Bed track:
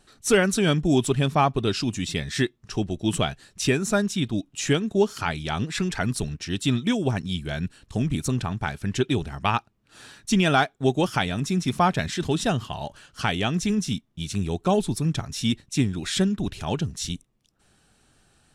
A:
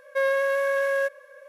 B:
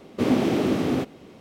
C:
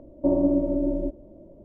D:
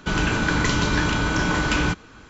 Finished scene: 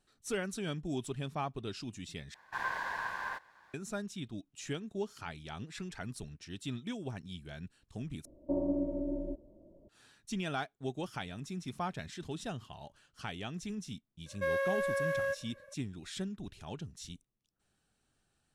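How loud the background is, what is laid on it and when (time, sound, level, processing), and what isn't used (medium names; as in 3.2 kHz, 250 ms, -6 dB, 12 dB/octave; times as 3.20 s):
bed track -16.5 dB
2.34 s: replace with B -12.5 dB + ring modulator 1.3 kHz
8.25 s: replace with C -11 dB
14.26 s: add A -9 dB
not used: D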